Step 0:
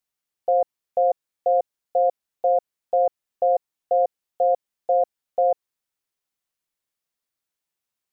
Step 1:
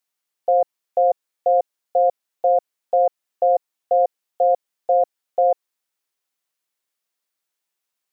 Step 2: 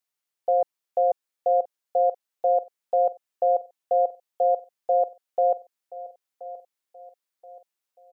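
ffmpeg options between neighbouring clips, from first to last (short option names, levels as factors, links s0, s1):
-af "highpass=f=360:p=1,volume=1.58"
-af "aecho=1:1:1027|2054|3081:0.133|0.052|0.0203,volume=0.596"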